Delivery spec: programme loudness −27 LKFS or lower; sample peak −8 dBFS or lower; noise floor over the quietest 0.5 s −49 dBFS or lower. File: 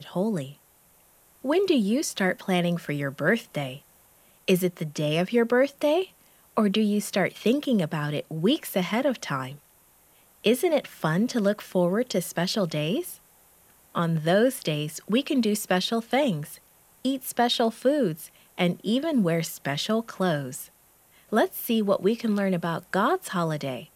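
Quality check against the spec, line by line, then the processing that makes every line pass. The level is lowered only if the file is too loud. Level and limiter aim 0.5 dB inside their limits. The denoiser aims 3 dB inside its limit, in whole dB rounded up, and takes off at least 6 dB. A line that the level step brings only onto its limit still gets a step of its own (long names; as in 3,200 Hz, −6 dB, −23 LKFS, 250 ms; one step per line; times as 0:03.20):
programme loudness −25.5 LKFS: out of spec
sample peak −8.5 dBFS: in spec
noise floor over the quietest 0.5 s −59 dBFS: in spec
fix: level −2 dB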